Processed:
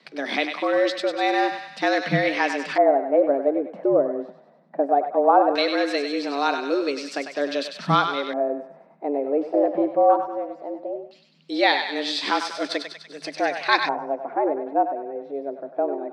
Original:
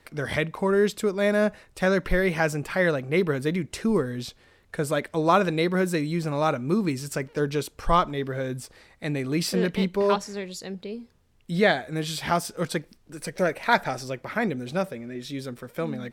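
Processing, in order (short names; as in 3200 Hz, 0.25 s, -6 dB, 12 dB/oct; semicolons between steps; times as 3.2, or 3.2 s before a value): thinning echo 98 ms, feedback 60%, high-pass 680 Hz, level -6 dB; frequency shift +140 Hz; LFO low-pass square 0.18 Hz 740–4300 Hz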